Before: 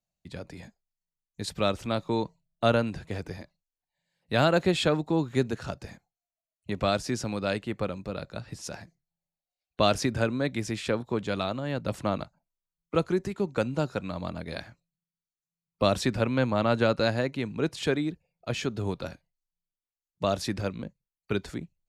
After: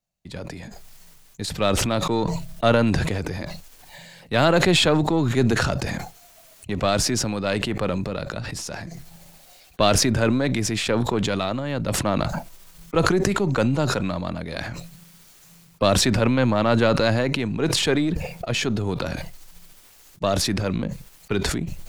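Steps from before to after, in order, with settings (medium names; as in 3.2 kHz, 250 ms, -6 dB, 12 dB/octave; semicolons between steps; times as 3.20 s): partial rectifier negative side -3 dB; decay stretcher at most 21 dB/s; trim +5.5 dB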